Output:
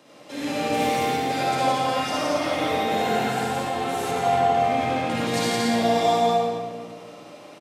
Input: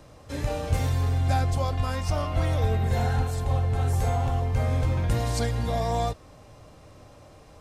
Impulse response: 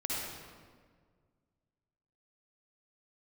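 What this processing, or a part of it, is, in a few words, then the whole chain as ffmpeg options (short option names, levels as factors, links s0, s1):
stadium PA: -filter_complex "[0:a]highpass=f=190:w=0.5412,highpass=f=190:w=1.3066,equalizer=f=3000:t=o:w=1:g=6.5,aecho=1:1:169.1|288.6:0.794|0.316[s0];[1:a]atrim=start_sample=2205[s1];[s0][s1]afir=irnorm=-1:irlink=0,asettb=1/sr,asplit=3[s2][s3][s4];[s2]atrim=end=4.114[s5];[s3]atrim=start=4.11:end=5.34,asetpts=PTS-STARTPTS,afade=t=in:d=0.004:c=qsin,afade=t=out:st=1.226:d=0.004:c=qsin,highshelf=f=9200:g=-8.5[s6];[s4]atrim=start=5.336[s7];[s5][s6]acrossfade=d=0.004:c1=hsin:c2=qsin[s8];[s8][s7]acrossfade=d=0.004:c1=qsin:c2=hsin"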